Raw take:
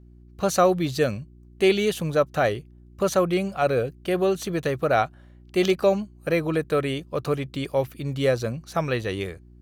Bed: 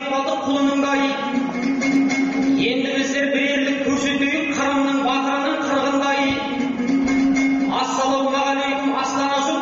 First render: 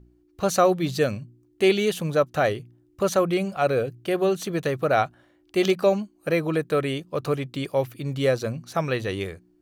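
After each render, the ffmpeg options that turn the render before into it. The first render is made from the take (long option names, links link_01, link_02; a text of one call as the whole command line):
ffmpeg -i in.wav -af "bandreject=frequency=60:width_type=h:width=4,bandreject=frequency=120:width_type=h:width=4,bandreject=frequency=180:width_type=h:width=4,bandreject=frequency=240:width_type=h:width=4" out.wav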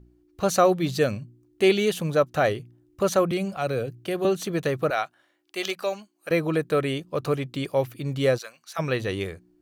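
ffmpeg -i in.wav -filter_complex "[0:a]asettb=1/sr,asplit=3[link_01][link_02][link_03];[link_01]atrim=end=3.314[link_04];[link_02]atrim=start=3.31:end=4.25,asetpts=PTS-STARTPTS,afade=type=in:duration=0.004:curve=qsin,afade=type=out:start_time=0.936:duration=0.004:curve=qsin,acrossover=split=230|3000[link_05][link_06][link_07];[link_06]acompressor=threshold=-33dB:ratio=1.5:attack=3.2:release=140:knee=2.83:detection=peak[link_08];[link_05][link_08][link_07]amix=inputs=3:normalize=0[link_09];[link_03]atrim=start=4.246[link_10];[link_04][link_09]acrossfade=duration=0.004:curve1=hsin:curve2=qsin[link_11];[link_11][link_10]acrossfade=duration=0.004:curve1=qsin:curve2=hsin,asettb=1/sr,asplit=3[link_12][link_13][link_14];[link_12]atrim=end=4.904[link_15];[link_13]atrim=start=4.9:end=6.31,asetpts=PTS-STARTPTS,afade=type=in:duration=0.004:curve=qsin,afade=type=out:start_time=1.406:duration=0.004:curve=qsin,highpass=frequency=1300:poles=1[link_16];[link_14]atrim=start=6.306[link_17];[link_15][link_16]acrossfade=duration=0.004:curve1=hsin:curve2=qsin[link_18];[link_18][link_17]acrossfade=duration=0.004:curve1=qsin:curve2=hsin,asplit=3[link_19][link_20][link_21];[link_19]afade=type=out:start_time=8.37:duration=0.02[link_22];[link_20]highpass=1300,afade=type=in:start_time=8.37:duration=0.02,afade=type=out:start_time=8.78:duration=0.02[link_23];[link_21]afade=type=in:start_time=8.78:duration=0.02[link_24];[link_22][link_23][link_24]amix=inputs=3:normalize=0" out.wav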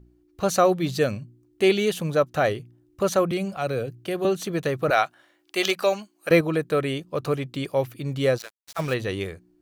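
ffmpeg -i in.wav -filter_complex "[0:a]asettb=1/sr,asplit=3[link_01][link_02][link_03];[link_01]atrim=end=4.884[link_04];[link_02]atrim=start=4.88:end=6.41,asetpts=PTS-STARTPTS,afade=type=in:duration=0.004:curve=qsin,afade=type=out:start_time=1.526:duration=0.004:curve=qsin,acontrast=51[link_05];[link_03]atrim=start=6.406[link_06];[link_04][link_05]acrossfade=duration=0.004:curve1=hsin:curve2=qsin[link_07];[link_07][link_06]acrossfade=duration=0.004:curve1=qsin:curve2=hsin,asettb=1/sr,asplit=3[link_08][link_09][link_10];[link_08]atrim=end=8.394[link_11];[link_09]atrim=start=8.39:end=8.94,asetpts=PTS-STARTPTS,afade=type=in:duration=0.004:curve=qsin,afade=type=out:start_time=0.546:duration=0.004:curve=qsin,acrusher=bits=5:mix=0:aa=0.5[link_12];[link_10]atrim=start=8.936[link_13];[link_11][link_12]acrossfade=duration=0.004:curve1=hsin:curve2=qsin[link_14];[link_14][link_13]acrossfade=duration=0.004:curve1=qsin:curve2=hsin" out.wav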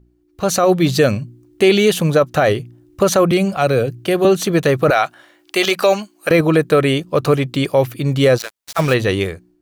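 ffmpeg -i in.wav -af "alimiter=limit=-15.5dB:level=0:latency=1:release=32,dynaudnorm=framelen=190:gausssize=5:maxgain=12dB" out.wav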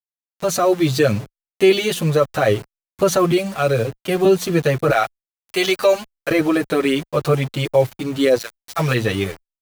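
ffmpeg -i in.wav -filter_complex "[0:a]aeval=exprs='val(0)*gte(abs(val(0)),0.0473)':channel_layout=same,asplit=2[link_01][link_02];[link_02]adelay=7.5,afreqshift=-0.74[link_03];[link_01][link_03]amix=inputs=2:normalize=1" out.wav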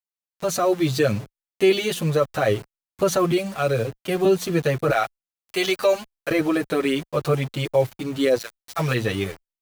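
ffmpeg -i in.wav -af "volume=-4dB" out.wav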